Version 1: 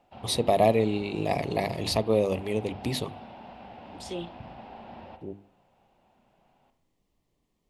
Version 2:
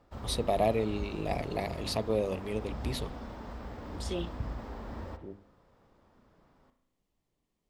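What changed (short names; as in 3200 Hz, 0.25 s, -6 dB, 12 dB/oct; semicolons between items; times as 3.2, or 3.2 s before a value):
first voice -6.0 dB; background: remove speaker cabinet 160–4100 Hz, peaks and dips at 290 Hz -7 dB, 450 Hz -8 dB, 760 Hz +9 dB, 1200 Hz -9 dB, 1800 Hz -5 dB, 2700 Hz +9 dB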